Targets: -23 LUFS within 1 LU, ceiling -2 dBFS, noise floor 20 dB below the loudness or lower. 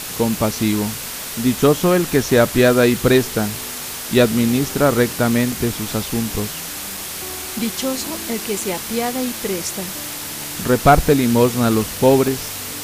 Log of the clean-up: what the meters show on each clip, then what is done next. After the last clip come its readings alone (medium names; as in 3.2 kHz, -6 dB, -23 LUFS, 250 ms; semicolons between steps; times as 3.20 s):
dropouts 6; longest dropout 2.7 ms; noise floor -29 dBFS; noise floor target -39 dBFS; loudness -18.5 LUFS; peak level -1.5 dBFS; loudness target -23.0 LUFS
-> interpolate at 2.31/5.52/6.97/7.59/8.61/12.28 s, 2.7 ms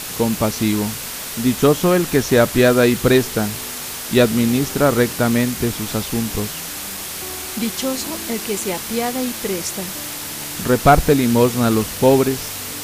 dropouts 0; noise floor -29 dBFS; noise floor target -39 dBFS
-> noise print and reduce 10 dB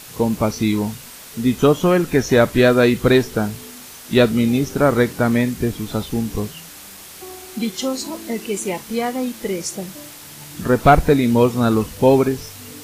noise floor -39 dBFS; loudness -18.5 LUFS; peak level -2.0 dBFS; loudness target -23.0 LUFS
-> trim -4.5 dB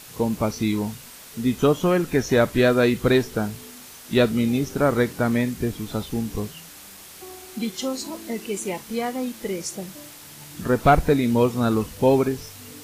loudness -23.0 LUFS; peak level -6.5 dBFS; noise floor -43 dBFS